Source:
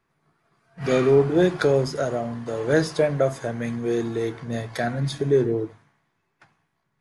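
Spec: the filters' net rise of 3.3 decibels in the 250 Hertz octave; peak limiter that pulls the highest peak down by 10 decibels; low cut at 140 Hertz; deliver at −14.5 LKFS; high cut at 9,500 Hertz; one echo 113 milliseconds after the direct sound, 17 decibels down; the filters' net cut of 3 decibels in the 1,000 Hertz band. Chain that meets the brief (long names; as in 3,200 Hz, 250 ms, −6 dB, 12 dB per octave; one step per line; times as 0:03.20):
high-pass filter 140 Hz
low-pass filter 9,500 Hz
parametric band 250 Hz +5.5 dB
parametric band 1,000 Hz −5.5 dB
brickwall limiter −16 dBFS
single-tap delay 113 ms −17 dB
level +12 dB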